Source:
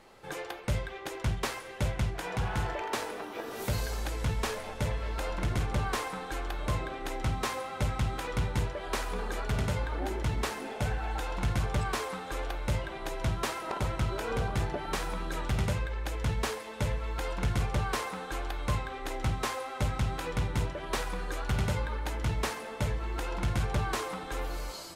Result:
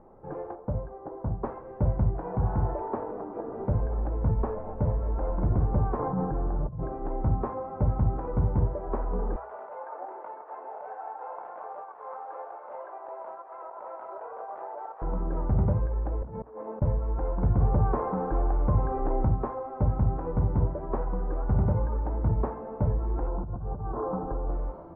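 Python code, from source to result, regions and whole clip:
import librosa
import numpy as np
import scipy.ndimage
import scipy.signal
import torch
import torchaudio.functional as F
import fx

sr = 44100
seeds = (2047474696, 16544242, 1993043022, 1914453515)

y = fx.chain(x, sr, fx.lowpass(hz=1200.0, slope=12),
    fx.low_shelf(hz=190.0, db=-7.5),
    fx.notch(hz=370.0, q=8.2), at=(0.55, 1.44))
y = fx.chain(y, sr, fx.lowpass(hz=2000.0, slope=24),
    fx.peak_eq(hz=140.0, db=14.5, octaves=1.1),
    fx.over_compress(threshold_db=-35.0, ratio=-1.0), at=(5.99, 6.83))
y = fx.chain(y, sr, fx.highpass(hz=610.0, slope=24),
    fx.over_compress(threshold_db=-39.0, ratio=-0.5),
    fx.echo_single(ms=500, db=-9.5), at=(9.36, 15.02))
y = fx.chain(y, sr, fx.highpass(hz=210.0, slope=12),
    fx.high_shelf(hz=3000.0, db=-10.0),
    fx.over_compress(threshold_db=-42.0, ratio=-0.5), at=(16.22, 16.82))
y = fx.chain(y, sr, fx.lowpass(hz=3500.0, slope=12),
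    fx.env_flatten(amount_pct=50), at=(17.58, 19.25))
y = fx.chain(y, sr, fx.steep_lowpass(hz=1500.0, slope=36),
    fx.over_compress(threshold_db=-36.0, ratio=-1.0), at=(23.27, 24.51))
y = scipy.signal.sosfilt(scipy.signal.butter(4, 1000.0, 'lowpass', fs=sr, output='sos'), y)
y = fx.low_shelf(y, sr, hz=320.0, db=4.5)
y = fx.hum_notches(y, sr, base_hz=60, count=2)
y = y * librosa.db_to_amplitude(2.5)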